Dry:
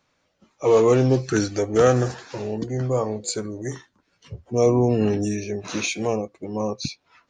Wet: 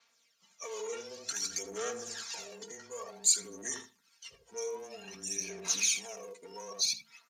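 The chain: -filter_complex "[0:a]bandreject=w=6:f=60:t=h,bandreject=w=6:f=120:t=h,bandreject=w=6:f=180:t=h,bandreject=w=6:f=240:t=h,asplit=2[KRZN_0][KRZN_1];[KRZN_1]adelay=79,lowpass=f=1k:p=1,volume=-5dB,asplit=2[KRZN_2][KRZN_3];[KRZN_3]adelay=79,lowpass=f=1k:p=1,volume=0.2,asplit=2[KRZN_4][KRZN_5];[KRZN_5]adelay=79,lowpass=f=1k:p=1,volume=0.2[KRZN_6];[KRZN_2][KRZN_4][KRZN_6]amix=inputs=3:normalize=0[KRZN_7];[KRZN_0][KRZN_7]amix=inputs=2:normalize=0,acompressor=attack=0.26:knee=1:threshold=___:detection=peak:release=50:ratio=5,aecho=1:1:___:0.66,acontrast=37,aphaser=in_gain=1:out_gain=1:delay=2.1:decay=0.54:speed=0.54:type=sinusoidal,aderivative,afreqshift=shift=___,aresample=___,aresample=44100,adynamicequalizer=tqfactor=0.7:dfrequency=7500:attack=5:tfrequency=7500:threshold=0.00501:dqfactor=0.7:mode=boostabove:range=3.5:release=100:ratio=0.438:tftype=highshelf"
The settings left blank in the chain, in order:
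-27dB, 4.3, -20, 32000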